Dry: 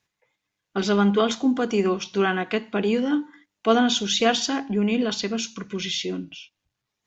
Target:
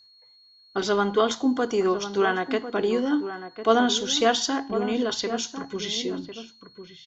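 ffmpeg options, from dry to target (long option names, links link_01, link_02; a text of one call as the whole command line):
ffmpeg -i in.wav -filter_complex "[0:a]equalizer=frequency=200:width_type=o:width=0.33:gain=-10,equalizer=frequency=1000:width_type=o:width=0.33:gain=3,equalizer=frequency=2500:width_type=o:width=0.33:gain=-10,aeval=exprs='val(0)+0.00224*sin(2*PI*4300*n/s)':channel_layout=same,asplit=2[link_01][link_02];[link_02]adelay=1050,volume=-10dB,highshelf=frequency=4000:gain=-23.6[link_03];[link_01][link_03]amix=inputs=2:normalize=0" out.wav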